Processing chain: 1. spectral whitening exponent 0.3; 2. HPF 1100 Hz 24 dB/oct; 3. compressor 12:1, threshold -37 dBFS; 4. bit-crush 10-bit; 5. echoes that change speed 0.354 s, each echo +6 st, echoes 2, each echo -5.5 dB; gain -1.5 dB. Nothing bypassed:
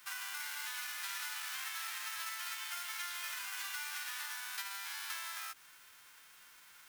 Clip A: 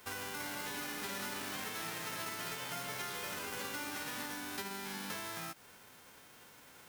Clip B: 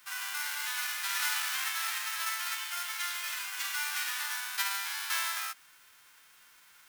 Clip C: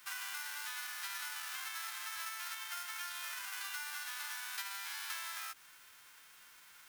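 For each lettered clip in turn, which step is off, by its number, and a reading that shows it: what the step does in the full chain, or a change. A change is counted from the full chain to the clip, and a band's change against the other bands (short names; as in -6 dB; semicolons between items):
2, 500 Hz band +23.0 dB; 3, mean gain reduction 5.5 dB; 5, momentary loudness spread change -1 LU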